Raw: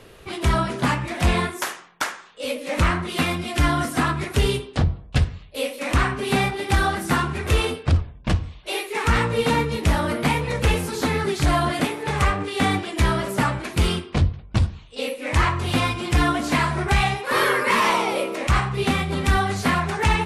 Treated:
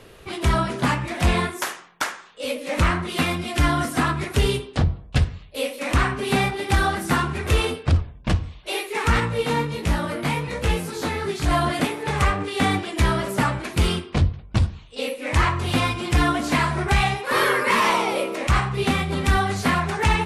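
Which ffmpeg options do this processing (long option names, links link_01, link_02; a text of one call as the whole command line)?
ffmpeg -i in.wav -filter_complex "[0:a]asettb=1/sr,asplit=3[link_01][link_02][link_03];[link_01]atrim=end=9.204[link_04];[link_02]atrim=start=9.2:end=11.51,asetpts=PTS-STARTPTS,afade=type=in:duration=0.004:curve=qsin,afade=type=out:start_time=2.306:duration=0.004:curve=qsin,flanger=delay=17.5:depth=3.9:speed=1.3[link_05];[link_03]atrim=start=11.506[link_06];[link_04][link_05]acrossfade=duration=0.004:curve1=hsin:curve2=qsin[link_07];[link_07][link_06]acrossfade=duration=0.004:curve1=qsin:curve2=hsin" out.wav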